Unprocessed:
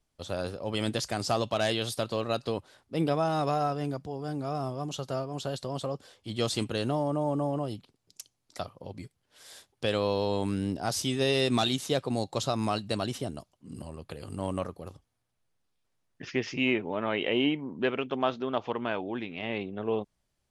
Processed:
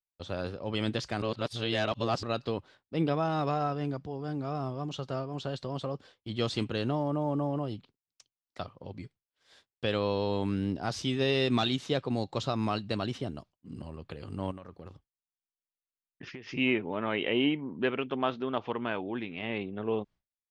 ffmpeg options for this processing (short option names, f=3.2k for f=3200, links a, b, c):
-filter_complex "[0:a]asettb=1/sr,asplit=3[a][b][c];[a]atrim=end=14.514[d];[b]atrim=start=14.51:end=16.49,asetpts=PTS-STARTPTS,afade=t=in:d=0.004:c=qsin,afade=t=out:st=1.976:d=0.004:c=qsin,acompressor=threshold=-38dB:ratio=16:attack=3.2:release=140:knee=1:detection=peak[e];[c]atrim=start=16.486[f];[d][e]acrossfade=d=0.004:c1=hsin:c2=qsin[g];[g][f]acrossfade=d=0.004:c1=qsin:c2=hsin,asplit=3[h][i][j];[h]atrim=end=1.222[k];[i]atrim=start=1.218:end=2.232,asetpts=PTS-STARTPTS,areverse[l];[j]atrim=start=2.228[m];[k][l]acrossfade=d=0.004:c1=hsin:c2=hsin[n];[n][m]acrossfade=d=0.004:c1=hsin:c2=hsin,lowpass=4k,agate=range=-33dB:threshold=-47dB:ratio=3:detection=peak,equalizer=f=650:w=1.6:g=-3.5"